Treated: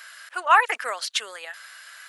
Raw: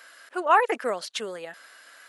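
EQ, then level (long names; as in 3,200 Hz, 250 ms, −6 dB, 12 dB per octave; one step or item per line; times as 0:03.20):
high-pass filter 1,200 Hz 12 dB per octave
+7.0 dB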